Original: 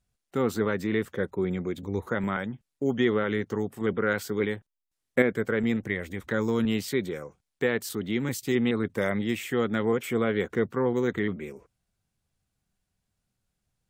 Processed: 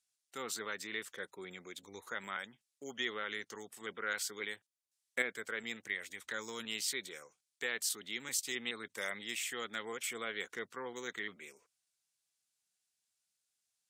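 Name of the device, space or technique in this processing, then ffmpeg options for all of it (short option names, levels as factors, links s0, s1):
piezo pickup straight into a mixer: -af "lowpass=8300,aderivative,volume=1.88"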